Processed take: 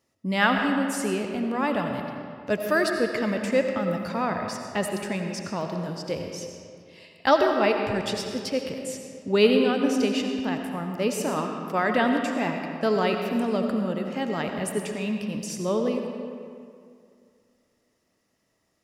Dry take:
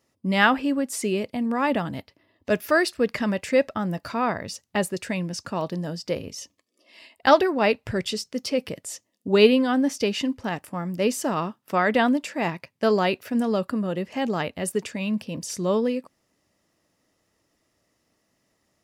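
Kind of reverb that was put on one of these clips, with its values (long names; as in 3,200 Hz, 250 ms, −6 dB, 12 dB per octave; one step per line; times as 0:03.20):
comb and all-pass reverb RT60 2.3 s, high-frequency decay 0.65×, pre-delay 45 ms, DRR 3.5 dB
level −3 dB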